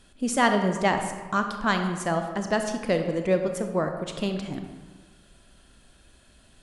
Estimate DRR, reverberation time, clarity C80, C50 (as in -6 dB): 5.5 dB, 1.5 s, 8.0 dB, 6.5 dB